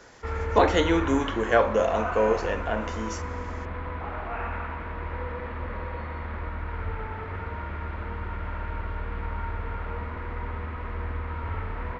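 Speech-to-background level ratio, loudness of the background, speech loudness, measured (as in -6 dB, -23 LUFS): 9.0 dB, -33.5 LUFS, -24.5 LUFS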